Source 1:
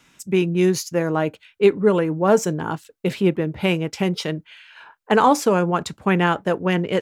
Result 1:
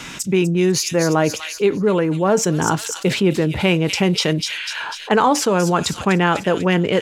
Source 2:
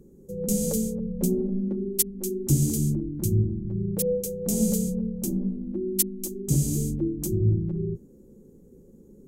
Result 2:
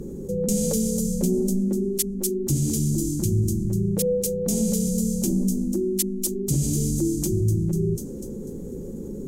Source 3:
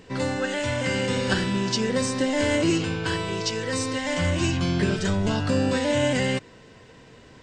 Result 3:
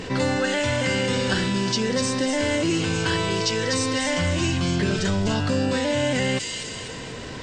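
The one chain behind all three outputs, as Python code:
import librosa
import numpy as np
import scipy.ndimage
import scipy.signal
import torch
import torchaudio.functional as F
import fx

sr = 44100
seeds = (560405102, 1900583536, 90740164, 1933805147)

y = fx.peak_eq(x, sr, hz=6200.0, db=3.5, octaves=2.3)
y = fx.echo_wet_highpass(y, sr, ms=247, feedback_pct=39, hz=4400.0, wet_db=-4.0)
y = fx.rider(y, sr, range_db=4, speed_s=0.5)
y = fx.high_shelf(y, sr, hz=8000.0, db=-7.0)
y = fx.env_flatten(y, sr, amount_pct=50)
y = F.gain(torch.from_numpy(y), -1.0).numpy()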